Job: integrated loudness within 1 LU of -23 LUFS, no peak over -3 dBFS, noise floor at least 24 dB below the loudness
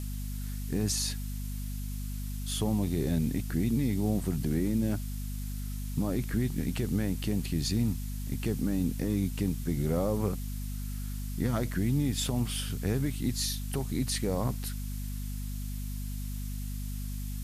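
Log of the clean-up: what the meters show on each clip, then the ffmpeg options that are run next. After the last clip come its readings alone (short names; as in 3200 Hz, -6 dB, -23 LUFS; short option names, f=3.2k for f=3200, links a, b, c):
hum 50 Hz; harmonics up to 250 Hz; hum level -33 dBFS; noise floor -36 dBFS; noise floor target -56 dBFS; loudness -32.0 LUFS; peak -18.0 dBFS; loudness target -23.0 LUFS
-> -af "bandreject=f=50:t=h:w=4,bandreject=f=100:t=h:w=4,bandreject=f=150:t=h:w=4,bandreject=f=200:t=h:w=4,bandreject=f=250:t=h:w=4"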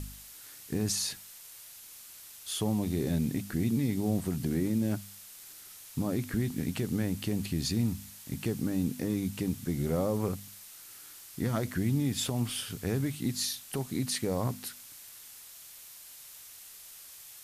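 hum none; noise floor -50 dBFS; noise floor target -56 dBFS
-> -af "afftdn=nr=6:nf=-50"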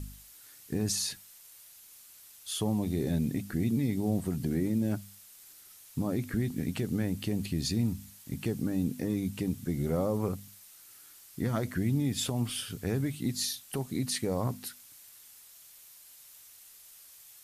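noise floor -54 dBFS; noise floor target -56 dBFS
-> -af "afftdn=nr=6:nf=-54"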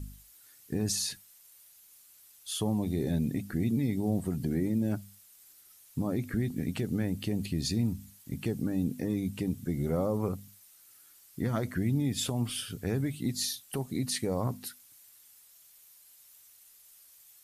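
noise floor -58 dBFS; loudness -32.0 LUFS; peak -19.0 dBFS; loudness target -23.0 LUFS
-> -af "volume=9dB"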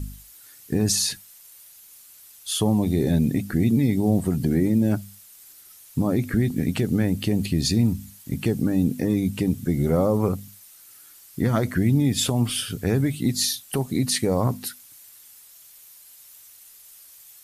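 loudness -23.0 LUFS; peak -10.0 dBFS; noise floor -49 dBFS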